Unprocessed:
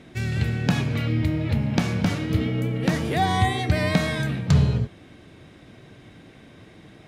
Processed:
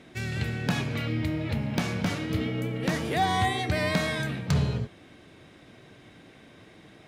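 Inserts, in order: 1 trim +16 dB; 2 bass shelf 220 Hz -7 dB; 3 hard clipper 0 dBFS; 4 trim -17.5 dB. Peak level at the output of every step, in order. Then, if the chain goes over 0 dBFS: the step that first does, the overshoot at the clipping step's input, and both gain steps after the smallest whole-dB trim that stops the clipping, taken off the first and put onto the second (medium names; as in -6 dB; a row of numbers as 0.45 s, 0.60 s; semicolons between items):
+8.5 dBFS, +7.5 dBFS, 0.0 dBFS, -17.5 dBFS; step 1, 7.5 dB; step 1 +8 dB, step 4 -9.5 dB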